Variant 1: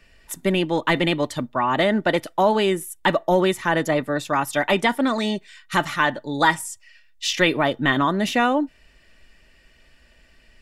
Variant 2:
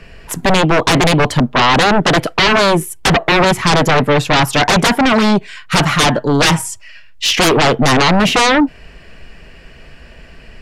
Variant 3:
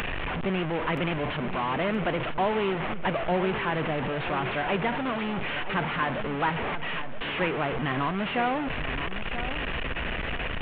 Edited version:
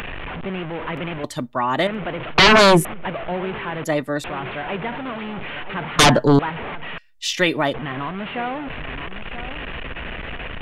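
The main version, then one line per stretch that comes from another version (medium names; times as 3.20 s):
3
1.24–1.87 s: from 1
2.38–2.85 s: from 2
3.84–4.24 s: from 1
5.99–6.39 s: from 2
6.98–7.74 s: from 1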